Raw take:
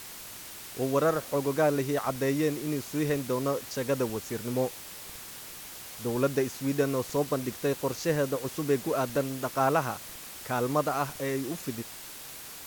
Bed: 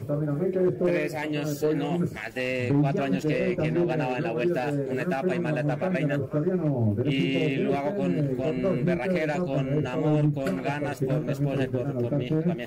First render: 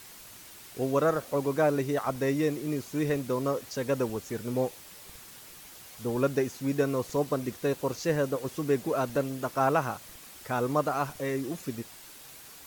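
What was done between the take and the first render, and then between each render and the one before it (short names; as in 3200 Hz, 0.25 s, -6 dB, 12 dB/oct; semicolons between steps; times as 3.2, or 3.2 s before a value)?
denoiser 6 dB, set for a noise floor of -44 dBFS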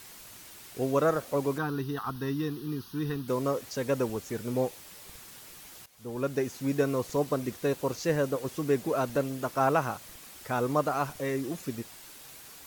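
1.58–3.28 fixed phaser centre 2200 Hz, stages 6; 5.86–6.57 fade in, from -16.5 dB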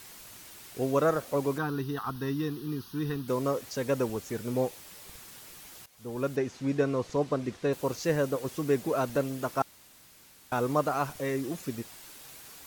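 6.36–7.73 air absorption 77 m; 9.62–10.52 room tone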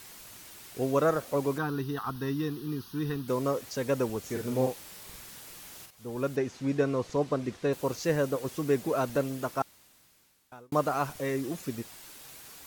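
4.19–5.91 doubler 46 ms -4 dB; 9.35–10.72 fade out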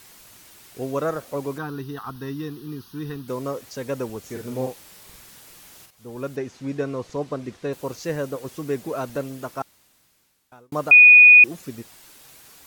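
10.91–11.44 bleep 2470 Hz -6 dBFS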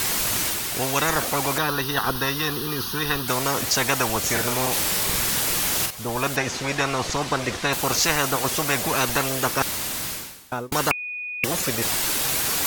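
reverse; upward compressor, threshold -37 dBFS; reverse; spectral compressor 10:1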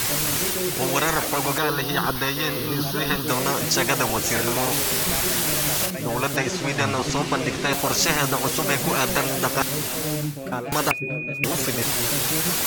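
add bed -5 dB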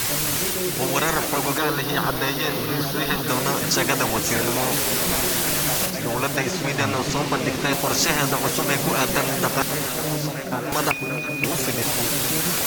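delay with a stepping band-pass 0.555 s, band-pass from 240 Hz, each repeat 1.4 oct, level -4 dB; lo-fi delay 0.27 s, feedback 80%, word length 6-bit, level -15 dB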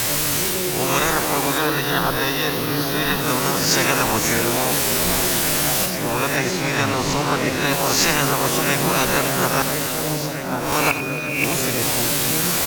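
spectral swells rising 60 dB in 0.62 s; echo 91 ms -11 dB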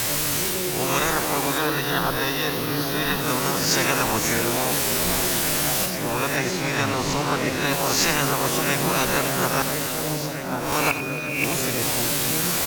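gain -3 dB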